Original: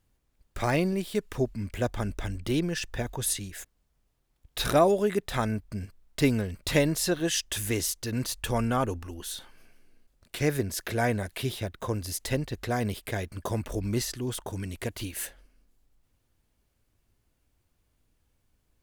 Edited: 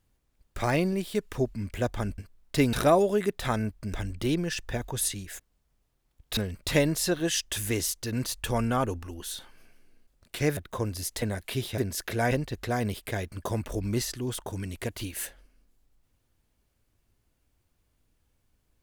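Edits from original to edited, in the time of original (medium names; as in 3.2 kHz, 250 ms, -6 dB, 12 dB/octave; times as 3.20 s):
2.18–4.62 s: swap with 5.82–6.37 s
10.57–11.10 s: swap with 11.66–12.31 s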